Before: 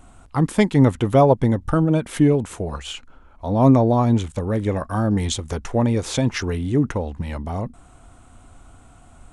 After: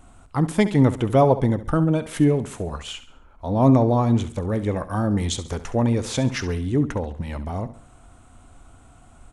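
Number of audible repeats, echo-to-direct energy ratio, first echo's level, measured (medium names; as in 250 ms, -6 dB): 3, -13.0 dB, -14.0 dB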